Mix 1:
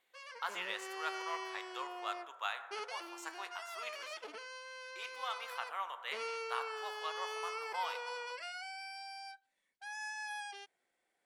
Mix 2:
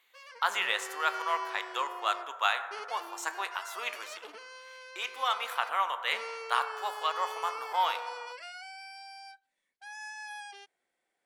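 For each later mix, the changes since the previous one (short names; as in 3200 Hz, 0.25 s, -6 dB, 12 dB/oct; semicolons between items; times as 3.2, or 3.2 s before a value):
speech +11.0 dB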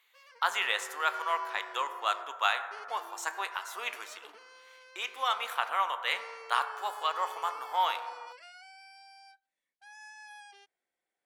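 background -7.0 dB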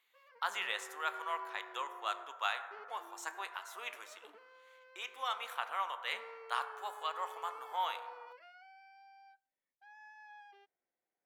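speech -7.5 dB; background: add tape spacing loss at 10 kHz 38 dB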